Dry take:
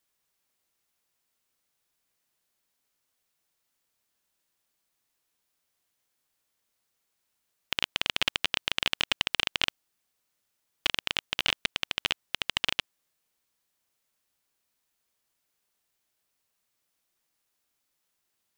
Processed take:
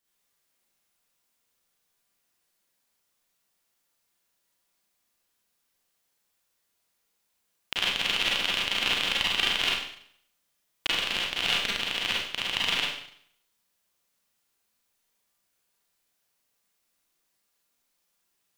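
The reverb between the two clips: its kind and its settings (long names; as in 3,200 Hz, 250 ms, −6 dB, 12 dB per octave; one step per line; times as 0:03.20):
four-comb reverb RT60 0.64 s, combs from 32 ms, DRR −5.5 dB
level −3.5 dB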